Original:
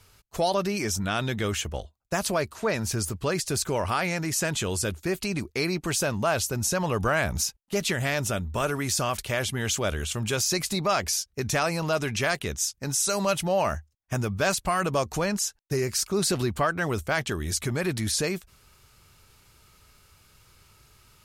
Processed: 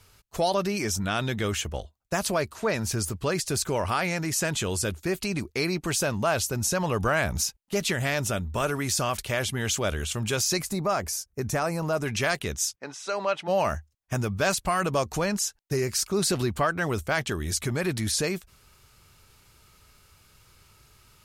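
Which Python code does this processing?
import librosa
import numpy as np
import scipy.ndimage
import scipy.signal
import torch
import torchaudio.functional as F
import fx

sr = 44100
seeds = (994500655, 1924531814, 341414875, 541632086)

y = fx.peak_eq(x, sr, hz=3400.0, db=-11.5, octaves=1.5, at=(10.62, 12.06))
y = fx.bandpass_edges(y, sr, low_hz=400.0, high_hz=2800.0, at=(12.75, 13.47), fade=0.02)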